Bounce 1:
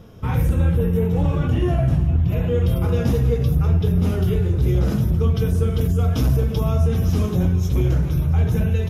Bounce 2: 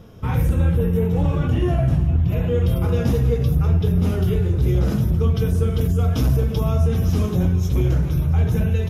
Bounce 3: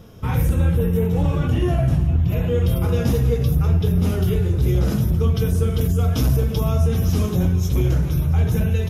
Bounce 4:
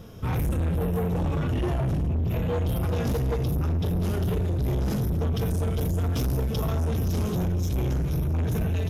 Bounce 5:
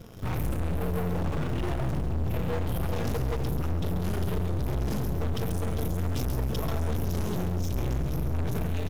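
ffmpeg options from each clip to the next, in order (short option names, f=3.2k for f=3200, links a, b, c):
-af anull
-af "highshelf=f=4.1k:g=6"
-af "asoftclip=type=tanh:threshold=-22.5dB"
-filter_complex "[0:a]aeval=exprs='(tanh(35.5*val(0)+0.75)-tanh(0.75))/35.5':c=same,asplit=2[a][b];[b]acrusher=bits=6:mix=0:aa=0.000001,volume=-9dB[c];[a][c]amix=inputs=2:normalize=0,aecho=1:1:136:0.299"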